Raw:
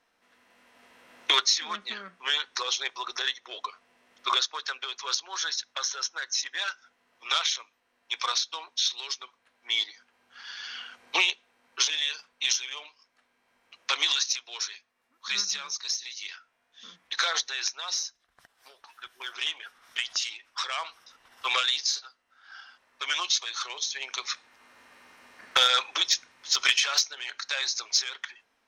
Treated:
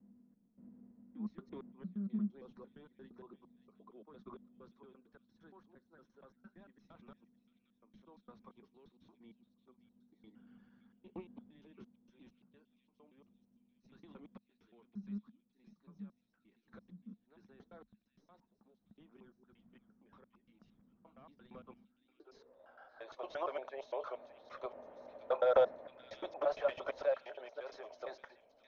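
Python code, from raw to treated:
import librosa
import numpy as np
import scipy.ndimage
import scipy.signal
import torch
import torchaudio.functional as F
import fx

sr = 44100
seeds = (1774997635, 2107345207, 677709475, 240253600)

p1 = fx.block_reorder(x, sr, ms=115.0, group=5)
p2 = 10.0 ** (-28.0 / 20.0) * np.tanh(p1 / 10.0 ** (-28.0 / 20.0))
p3 = p1 + (p2 * 10.0 ** (-4.0 / 20.0))
p4 = fx.filter_sweep_lowpass(p3, sr, from_hz=210.0, to_hz=600.0, start_s=21.86, end_s=22.65, q=6.7)
p5 = fx.echo_stepped(p4, sr, ms=573, hz=3000.0, octaves=0.7, feedback_pct=70, wet_db=-9.5)
y = p5 * 10.0 ** (-3.5 / 20.0)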